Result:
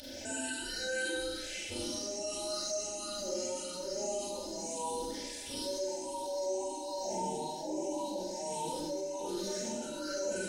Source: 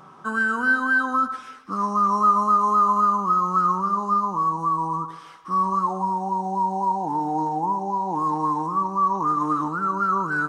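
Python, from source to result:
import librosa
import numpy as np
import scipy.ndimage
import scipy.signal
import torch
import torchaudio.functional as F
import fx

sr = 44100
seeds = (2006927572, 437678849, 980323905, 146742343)

p1 = fx.spec_ripple(x, sr, per_octave=0.6, drift_hz=1.6, depth_db=12)
p2 = scipy.signal.sosfilt(scipy.signal.cheby1(2, 1.0, [400.0, 3200.0], 'bandstop', fs=sr, output='sos'), p1)
p3 = fx.spec_gate(p2, sr, threshold_db=-15, keep='weak')
p4 = p3 + 0.9 * np.pad(p3, (int(3.4 * sr / 1000.0), 0))[:len(p3)]
p5 = fx.rider(p4, sr, range_db=10, speed_s=0.5)
p6 = p4 + (p5 * 10.0 ** (-2.0 / 20.0))
p7 = fx.tremolo_shape(p6, sr, shape='triangle', hz=1.3, depth_pct=75)
p8 = fx.rev_schroeder(p7, sr, rt60_s=0.88, comb_ms=33, drr_db=-9.0)
p9 = fx.env_flatten(p8, sr, amount_pct=50)
y = p9 * 10.0 ** (-7.0 / 20.0)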